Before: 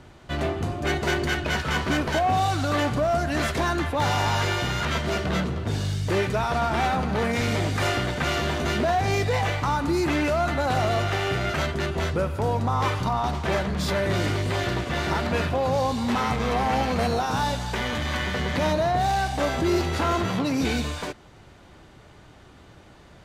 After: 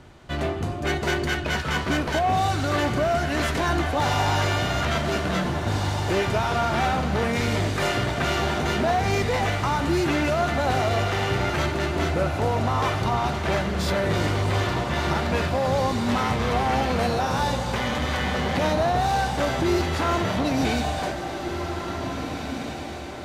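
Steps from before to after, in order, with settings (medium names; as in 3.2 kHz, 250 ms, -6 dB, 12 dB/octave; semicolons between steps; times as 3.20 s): echo that smears into a reverb 1862 ms, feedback 42%, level -6.5 dB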